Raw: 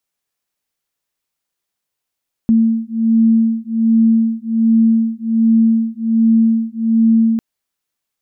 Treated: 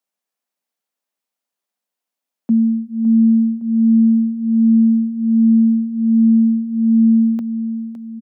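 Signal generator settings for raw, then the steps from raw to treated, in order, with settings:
two tones that beat 225 Hz, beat 1.3 Hz, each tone −13.5 dBFS 4.90 s
Chebyshev high-pass with heavy ripple 170 Hz, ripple 6 dB
on a send: repeating echo 561 ms, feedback 39%, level −11 dB

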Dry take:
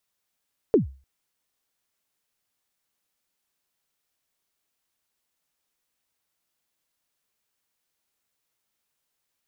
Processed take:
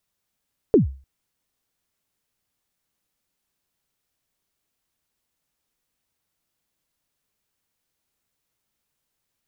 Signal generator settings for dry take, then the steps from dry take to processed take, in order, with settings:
synth kick length 0.30 s, from 490 Hz, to 67 Hz, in 127 ms, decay 0.35 s, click off, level −10.5 dB
low-shelf EQ 290 Hz +9 dB

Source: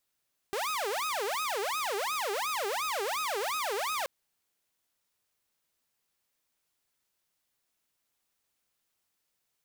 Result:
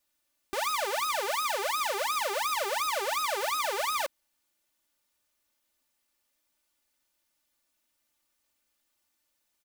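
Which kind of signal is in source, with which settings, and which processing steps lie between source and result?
siren wail 391–1,270 Hz 2.8 per second saw −27.5 dBFS 3.53 s
comb filter 3.4 ms, depth 86%

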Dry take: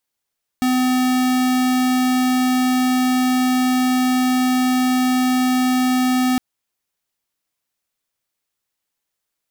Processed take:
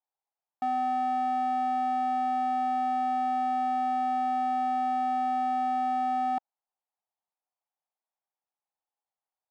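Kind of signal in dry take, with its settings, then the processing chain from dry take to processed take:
tone square 254 Hz −17 dBFS 5.76 s
resonant band-pass 800 Hz, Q 4.2

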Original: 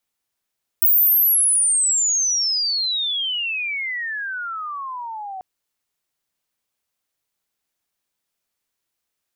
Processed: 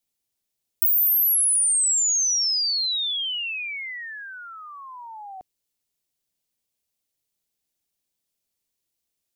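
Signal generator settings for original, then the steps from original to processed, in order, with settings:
glide logarithmic 16,000 Hz → 740 Hz −11.5 dBFS → −29 dBFS 4.59 s
parametric band 1,300 Hz −11 dB 1.8 octaves
downward compressor 3 to 1, threshold −19 dBFS

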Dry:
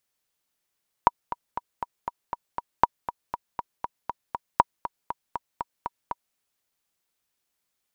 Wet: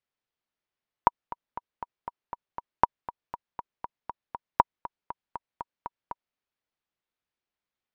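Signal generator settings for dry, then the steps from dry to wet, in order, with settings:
click track 238 BPM, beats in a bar 7, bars 3, 958 Hz, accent 13.5 dB −2 dBFS
output level in coarse steps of 17 dB
high-frequency loss of the air 200 metres

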